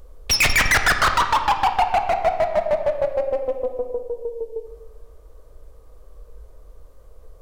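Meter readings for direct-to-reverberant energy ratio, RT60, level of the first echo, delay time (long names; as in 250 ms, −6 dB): 6.0 dB, 1.3 s, no echo audible, no echo audible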